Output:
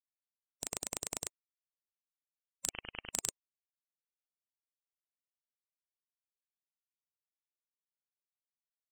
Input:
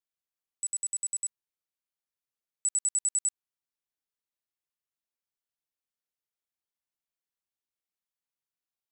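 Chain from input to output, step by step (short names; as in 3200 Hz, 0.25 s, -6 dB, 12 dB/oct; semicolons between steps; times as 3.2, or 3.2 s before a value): spectral gate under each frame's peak -30 dB weak; in parallel at -8.5 dB: sample-and-hold 28×; 2.69–3.13 on the sum: inverted band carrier 3100 Hz; gain +14.5 dB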